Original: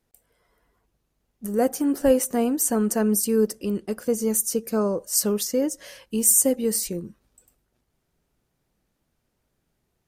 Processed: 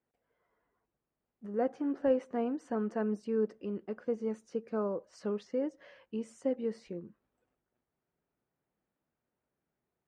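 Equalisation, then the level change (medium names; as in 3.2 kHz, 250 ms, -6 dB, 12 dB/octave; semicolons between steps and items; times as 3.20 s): high-pass 240 Hz 6 dB/octave; low-pass 2.1 kHz 12 dB/octave; distance through air 81 m; -8.0 dB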